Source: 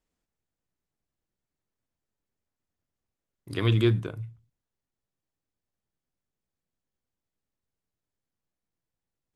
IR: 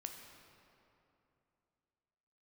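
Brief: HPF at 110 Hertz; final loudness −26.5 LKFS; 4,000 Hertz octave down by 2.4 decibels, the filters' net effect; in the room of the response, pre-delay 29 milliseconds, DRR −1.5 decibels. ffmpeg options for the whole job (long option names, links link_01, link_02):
-filter_complex "[0:a]highpass=110,equalizer=frequency=4000:width_type=o:gain=-3,asplit=2[link_01][link_02];[1:a]atrim=start_sample=2205,adelay=29[link_03];[link_02][link_03]afir=irnorm=-1:irlink=0,volume=4.5dB[link_04];[link_01][link_04]amix=inputs=2:normalize=0,volume=-1dB"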